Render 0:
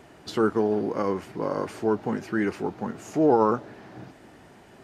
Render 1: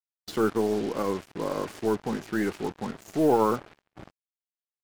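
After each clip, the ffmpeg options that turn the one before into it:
-af "acrusher=bits=5:mix=0:aa=0.5,aeval=exprs='0.422*(cos(1*acos(clip(val(0)/0.422,-1,1)))-cos(1*PI/2))+0.00841*(cos(8*acos(clip(val(0)/0.422,-1,1)))-cos(8*PI/2))':c=same,agate=range=0.0224:threshold=0.00708:ratio=3:detection=peak,volume=0.794"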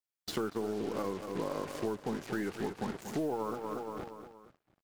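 -filter_complex "[0:a]asplit=2[s0][s1];[s1]aecho=0:1:235|470|705|940:0.251|0.111|0.0486|0.0214[s2];[s0][s2]amix=inputs=2:normalize=0,acompressor=threshold=0.0282:ratio=10"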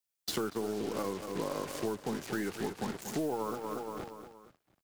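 -filter_complex "[0:a]highshelf=f=3900:g=7.5,acrossover=split=110|1700|2100[s0][s1][s2][s3];[s3]acrusher=bits=3:mode=log:mix=0:aa=0.000001[s4];[s0][s1][s2][s4]amix=inputs=4:normalize=0"

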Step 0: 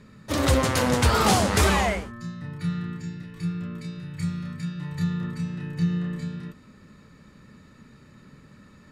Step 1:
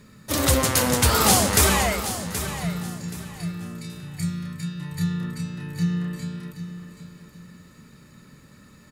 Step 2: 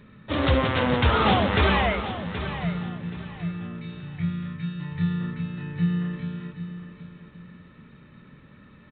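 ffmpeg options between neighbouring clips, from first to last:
-af "aemphasis=mode=production:type=50fm,aecho=1:1:776|1552|2328:0.266|0.0745|0.0209"
-af "aresample=8000,aresample=44100"

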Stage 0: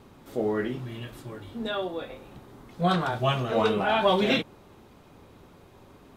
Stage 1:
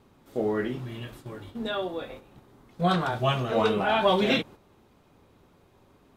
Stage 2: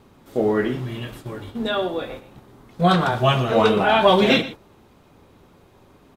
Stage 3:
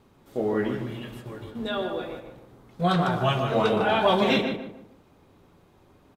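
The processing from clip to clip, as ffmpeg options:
-af "agate=range=0.447:threshold=0.00708:ratio=16:detection=peak"
-af "aecho=1:1:117:0.168,volume=2.24"
-filter_complex "[0:a]asplit=2[s0][s1];[s1]adelay=151,lowpass=f=1500:p=1,volume=0.596,asplit=2[s2][s3];[s3]adelay=151,lowpass=f=1500:p=1,volume=0.35,asplit=2[s4][s5];[s5]adelay=151,lowpass=f=1500:p=1,volume=0.35,asplit=2[s6][s7];[s7]adelay=151,lowpass=f=1500:p=1,volume=0.35[s8];[s0][s2][s4][s6][s8]amix=inputs=5:normalize=0,volume=0.473"

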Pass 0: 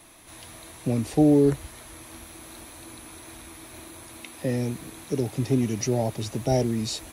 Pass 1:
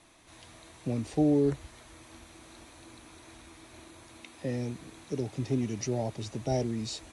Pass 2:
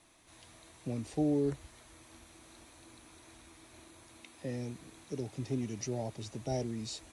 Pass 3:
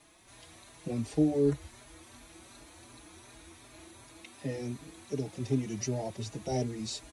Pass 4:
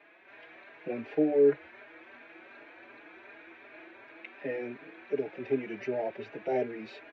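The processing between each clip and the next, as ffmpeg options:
-af "lowpass=f=8900:w=0.5412,lowpass=f=8900:w=1.3066,volume=0.473"
-af "highshelf=f=7900:g=6,volume=0.531"
-filter_complex "[0:a]asplit=2[s0][s1];[s1]adelay=4.5,afreqshift=2.7[s2];[s0][s2]amix=inputs=2:normalize=1,volume=2.11"
-af "highpass=350,equalizer=f=410:t=q:w=4:g=6,equalizer=f=590:t=q:w=4:g=4,equalizer=f=1100:t=q:w=4:g=-4,equalizer=f=1600:t=q:w=4:g=10,equalizer=f=2400:t=q:w=4:g=8,lowpass=f=2600:w=0.5412,lowpass=f=2600:w=1.3066,volume=1.26"

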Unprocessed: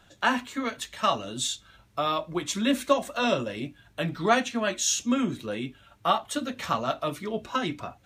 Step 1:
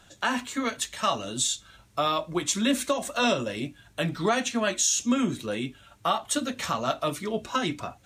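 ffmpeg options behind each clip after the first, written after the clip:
-af "equalizer=f=8000:w=0.8:g=7,alimiter=limit=0.168:level=0:latency=1:release=136,volume=1.19"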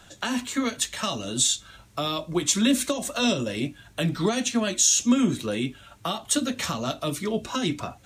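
-filter_complex "[0:a]acrossover=split=430|3000[s0][s1][s2];[s1]acompressor=threshold=0.0158:ratio=6[s3];[s0][s3][s2]amix=inputs=3:normalize=0,volume=1.68"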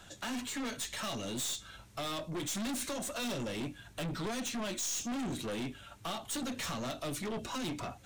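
-af "aeval=exprs='(tanh(39.8*val(0)+0.2)-tanh(0.2))/39.8':c=same,volume=0.75"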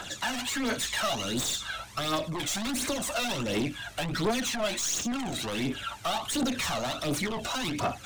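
-filter_complex "[0:a]asplit=2[s0][s1];[s1]highpass=f=720:p=1,volume=6.31,asoftclip=type=tanh:threshold=0.0237[s2];[s0][s2]amix=inputs=2:normalize=0,lowpass=f=6400:p=1,volume=0.501,aphaser=in_gain=1:out_gain=1:delay=1.6:decay=0.55:speed=1.4:type=triangular,volume=1.88"

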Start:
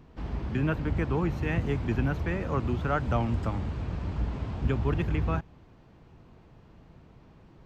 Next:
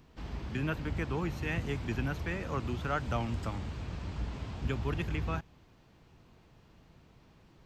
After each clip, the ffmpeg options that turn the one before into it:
-af "highshelf=f=2300:g=11.5,volume=0.473"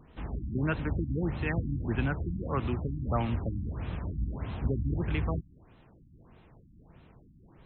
-af "afftfilt=real='re*lt(b*sr/1024,300*pow(4200/300,0.5+0.5*sin(2*PI*1.6*pts/sr)))':imag='im*lt(b*sr/1024,300*pow(4200/300,0.5+0.5*sin(2*PI*1.6*pts/sr)))':win_size=1024:overlap=0.75,volume=1.58"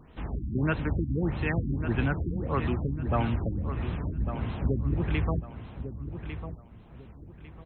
-af "aecho=1:1:1150|2300|3450:0.316|0.0917|0.0266,volume=1.33"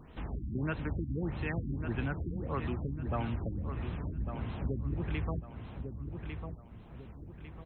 -af "acompressor=threshold=0.00708:ratio=1.5"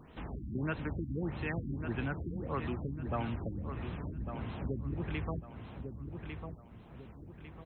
-af "lowshelf=f=68:g=-9"

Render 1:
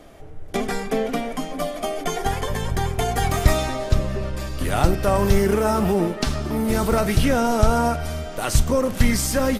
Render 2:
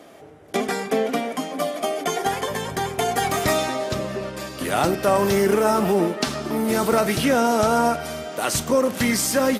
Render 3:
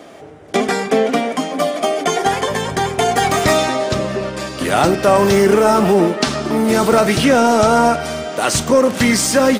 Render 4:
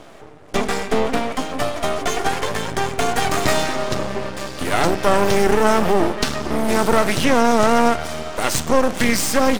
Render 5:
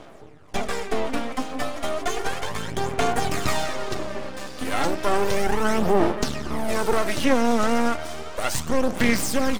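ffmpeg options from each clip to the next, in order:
-af "highpass=210,volume=1.26"
-af "acontrast=48,equalizer=f=12000:w=3.1:g=-15,volume=1.19"
-af "aeval=exprs='max(val(0),0)':c=same"
-af "aphaser=in_gain=1:out_gain=1:delay=4:decay=0.45:speed=0.33:type=sinusoidal,volume=0.447"

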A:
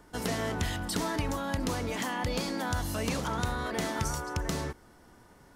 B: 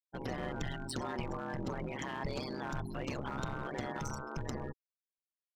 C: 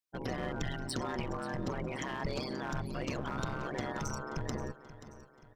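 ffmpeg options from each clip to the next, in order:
-af "afftfilt=real='re*gte(hypot(re,im),0.0251)':imag='im*gte(hypot(re,im),0.0251)':win_size=1024:overlap=0.75,aeval=exprs='clip(val(0),-1,0.0299)':c=same,aeval=exprs='val(0)*sin(2*PI*67*n/s)':c=same,volume=0.75"
-af "equalizer=f=5400:w=4.1:g=3,bandreject=f=860:w=12,aecho=1:1:531|1062|1593|2124:0.178|0.0818|0.0376|0.0173,volume=1.26"

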